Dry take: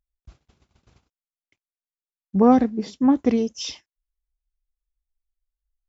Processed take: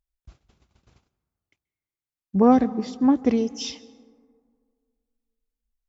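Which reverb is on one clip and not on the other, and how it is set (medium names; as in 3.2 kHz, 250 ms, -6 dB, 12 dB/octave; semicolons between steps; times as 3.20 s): plate-style reverb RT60 2 s, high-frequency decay 0.35×, pre-delay 120 ms, DRR 19.5 dB; trim -1 dB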